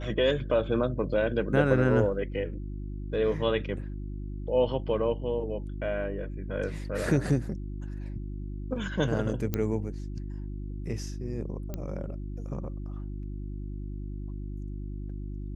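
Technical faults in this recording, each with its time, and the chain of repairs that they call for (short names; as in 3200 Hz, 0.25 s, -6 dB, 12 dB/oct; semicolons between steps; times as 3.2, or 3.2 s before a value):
hum 50 Hz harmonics 7 -36 dBFS
9.54 pop -14 dBFS
11.74 pop -21 dBFS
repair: de-click; de-hum 50 Hz, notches 7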